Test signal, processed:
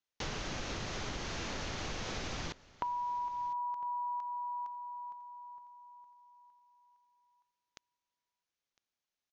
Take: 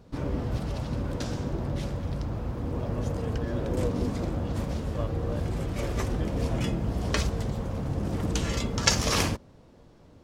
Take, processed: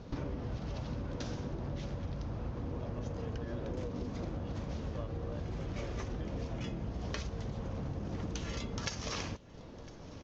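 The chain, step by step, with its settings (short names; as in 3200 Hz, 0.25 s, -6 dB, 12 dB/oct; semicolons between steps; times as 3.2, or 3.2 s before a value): elliptic low-pass 6500 Hz, stop band 40 dB; compressor 12:1, threshold -41 dBFS; on a send: echo 1.006 s -21.5 dB; on the sum: gain +6 dB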